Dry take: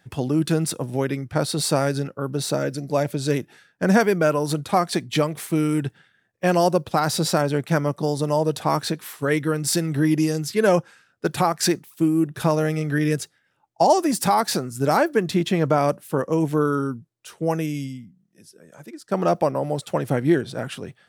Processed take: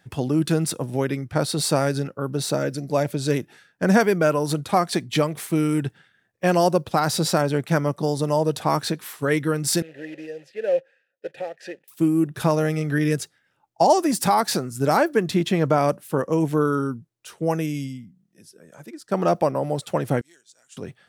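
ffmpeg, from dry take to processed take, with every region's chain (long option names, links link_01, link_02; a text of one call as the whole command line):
ffmpeg -i in.wav -filter_complex "[0:a]asettb=1/sr,asplit=3[link_01][link_02][link_03];[link_01]atrim=end=9.824[link_04];[link_02]atrim=start=9.82:end=11.88,asetpts=PTS-STARTPTS,afade=type=in:duration=0.004:curve=qsin,afade=type=out:start_time=2.056:duration=0.004:curve=qsin,acrusher=bits=3:mode=log:mix=0:aa=0.000001,asplit=3[link_05][link_06][link_07];[link_05]bandpass=frequency=530:width_type=q:width=8,volume=0dB[link_08];[link_06]bandpass=frequency=1840:width_type=q:width=8,volume=-6dB[link_09];[link_07]bandpass=frequency=2480:width_type=q:width=8,volume=-9dB[link_10];[link_08][link_09][link_10]amix=inputs=3:normalize=0,equalizer=frequency=790:width=4.5:gain=4[link_11];[link_03]atrim=start=11.876[link_12];[link_04][link_11]acrossfade=duration=0.004:curve1=hsin:curve2=qsin[link_13];[link_13][link_12]acrossfade=duration=0.004:curve1=qsin:curve2=hsin,asettb=1/sr,asplit=3[link_14][link_15][link_16];[link_14]atrim=end=20.214[link_17];[link_15]atrim=start=20.21:end=20.77,asetpts=PTS-STARTPTS,afade=type=in:duration=0.004:curve=qsin,afade=type=out:start_time=0.556:duration=0.004:curve=qsin,bandpass=frequency=7000:width_type=q:width=5.1,acrusher=bits=7:mode=log:mix=0:aa=0.000001[link_18];[link_16]atrim=start=20.766[link_19];[link_17][link_18]acrossfade=duration=0.004:curve1=hsin:curve2=qsin[link_20];[link_20][link_19]acrossfade=duration=0.004:curve1=qsin:curve2=hsin" out.wav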